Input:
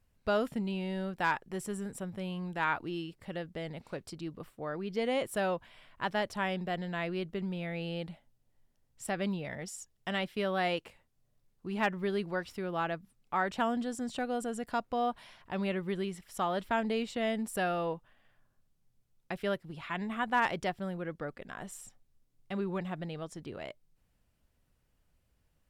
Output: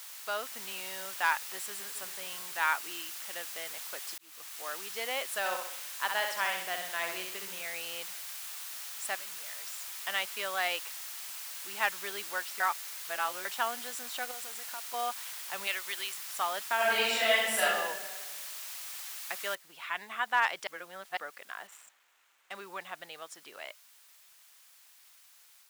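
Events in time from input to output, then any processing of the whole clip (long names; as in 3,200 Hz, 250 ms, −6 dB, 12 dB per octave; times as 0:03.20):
0:01.43–0:01.94: delay throw 270 ms, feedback 60%, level −11 dB
0:03.16–0:03.65: low-pass filter 10,000 Hz
0:04.18–0:04.80: fade in equal-power
0:05.39–0:07.62: repeating echo 65 ms, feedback 47%, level −4.5 dB
0:09.15–0:09.96: downward compressor 3 to 1, threshold −49 dBFS
0:12.60–0:13.45: reverse
0:14.31–0:14.94: downward compressor 4 to 1, threshold −40 dBFS
0:15.67–0:16.14: spectral tilt +4 dB per octave
0:16.76–0:17.61: thrown reverb, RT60 1.4 s, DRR −10 dB
0:19.55: noise floor change −46 dB −63 dB
0:20.67–0:21.17: reverse
0:21.67–0:22.55: running median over 9 samples
whole clip: high-pass filter 1,000 Hz 12 dB per octave; automatic gain control gain up to 4 dB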